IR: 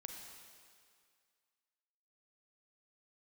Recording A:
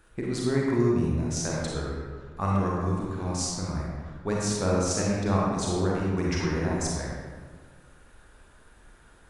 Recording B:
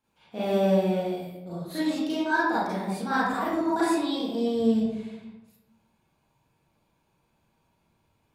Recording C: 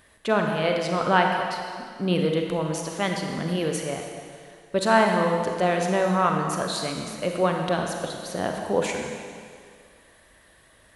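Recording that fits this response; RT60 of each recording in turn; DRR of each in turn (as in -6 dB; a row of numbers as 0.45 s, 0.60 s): C; 1.6 s, 1.0 s, 2.1 s; -4.5 dB, -10.5 dB, 2.0 dB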